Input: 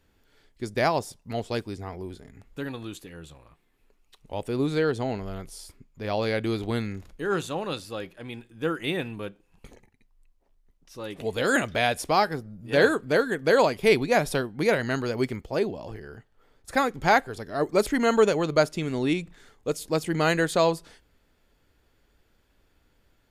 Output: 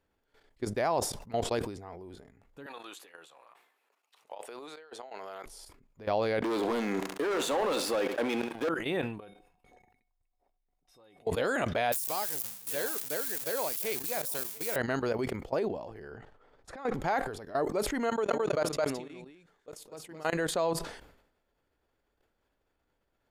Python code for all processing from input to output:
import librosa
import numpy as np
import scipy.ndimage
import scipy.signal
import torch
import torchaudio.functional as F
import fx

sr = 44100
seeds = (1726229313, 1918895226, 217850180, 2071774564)

y = fx.chain(x, sr, fx.highpass(hz=720.0, slope=12),
    fx.over_compress(threshold_db=-40.0, ratio=-0.5), at=(2.66, 5.46))
y = fx.chain(y, sr, fx.highpass(hz=230.0, slope=24),
    fx.leveller(passes=5),
    fx.echo_feedback(ms=68, feedback_pct=24, wet_db=-15.0), at=(6.42, 8.69))
y = fx.chain(y, sr, fx.peak_eq(hz=6500.0, db=-4.0, octaves=0.29),
    fx.comb_fb(f0_hz=740.0, decay_s=0.2, harmonics='odd', damping=0.0, mix_pct=90),
    fx.env_flatten(amount_pct=50), at=(9.2, 11.27))
y = fx.chain(y, sr, fx.crossing_spikes(level_db=-15.5),
    fx.pre_emphasis(coefficient=0.8),
    fx.echo_single(ms=697, db=-16.0), at=(11.92, 14.76))
y = fx.chain(y, sr, fx.over_compress(threshold_db=-28.0, ratio=-0.5),
    fx.air_absorb(metres=64.0), at=(16.11, 16.93))
y = fx.chain(y, sr, fx.low_shelf(hz=170.0, db=-8.0),
    fx.level_steps(step_db=22),
    fx.echo_single(ms=216, db=-4.0), at=(18.09, 20.33))
y = fx.level_steps(y, sr, step_db=15)
y = fx.peak_eq(y, sr, hz=730.0, db=8.5, octaves=2.5)
y = fx.sustainer(y, sr, db_per_s=76.0)
y = F.gain(torch.from_numpy(y), -5.0).numpy()